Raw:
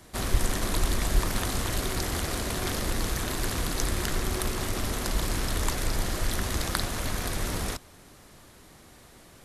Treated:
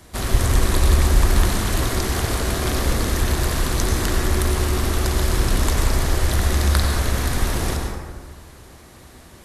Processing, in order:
parametric band 65 Hz +8 dB 0.59 octaves
on a send: feedback echo with a low-pass in the loop 69 ms, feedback 72%, level −12 dB
on the sum: dense smooth reverb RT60 1.5 s, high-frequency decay 0.45×, pre-delay 80 ms, DRR 1 dB
level +4 dB

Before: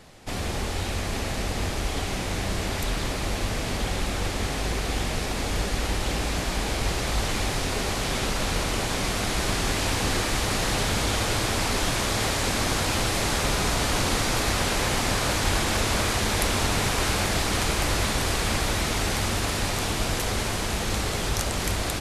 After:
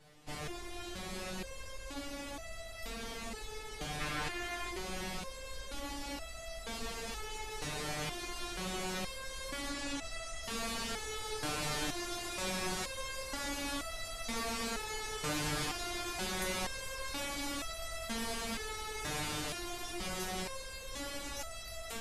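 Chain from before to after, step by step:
0:04.00–0:04.70: parametric band 1,700 Hz +8 dB 1.6 octaves
0:09.67–0:10.43: low-pass filter 9,900 Hz 24 dB per octave
step-sequenced resonator 2.1 Hz 150–660 Hz
level +1 dB

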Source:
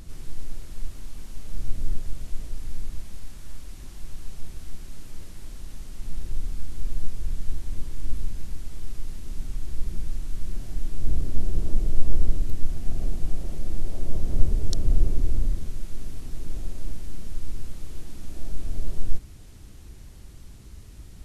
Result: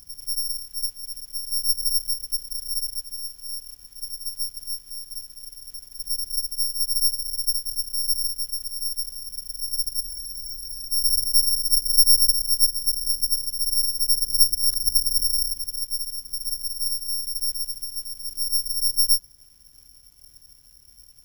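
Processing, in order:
pitch shifter swept by a sawtooth −7.5 semitones, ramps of 506 ms
bad sample-rate conversion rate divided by 8×, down none, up zero stuff
frozen spectrum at 0:10.03, 0.85 s
level −16 dB

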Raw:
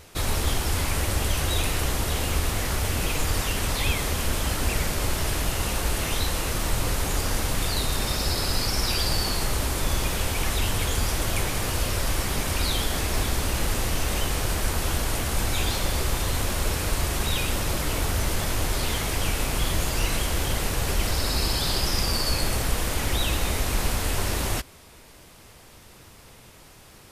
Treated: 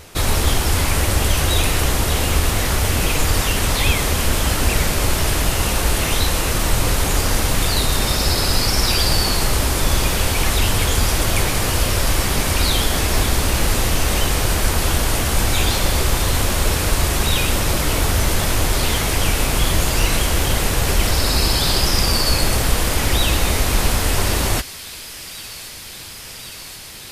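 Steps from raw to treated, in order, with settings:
delay with a high-pass on its return 1,080 ms, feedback 84%, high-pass 2,000 Hz, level −15.5 dB
level +7.5 dB

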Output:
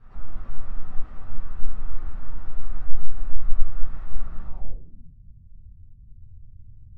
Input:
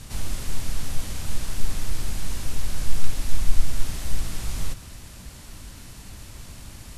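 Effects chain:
spectral magnitudes quantised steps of 15 dB
rectangular room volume 58 cubic metres, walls mixed, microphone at 1.1 metres
low-pass filter sweep 1,300 Hz → 120 Hz, 0:04.43–0:05.20
level −17 dB

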